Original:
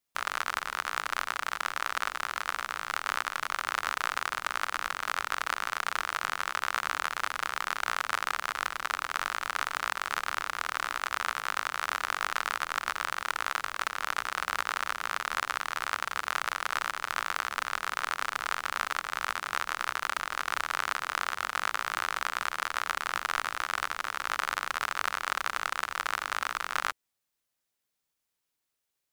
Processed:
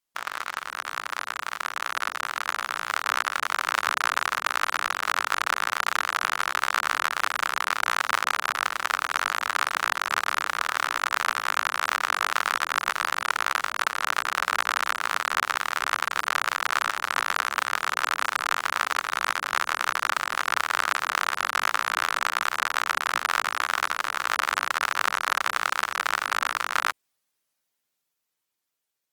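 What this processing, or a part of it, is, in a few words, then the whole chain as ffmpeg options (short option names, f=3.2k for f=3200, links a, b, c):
video call: -af "highpass=f=140:p=1,dynaudnorm=f=490:g=9:m=7dB" -ar 48000 -c:a libopus -b:a 20k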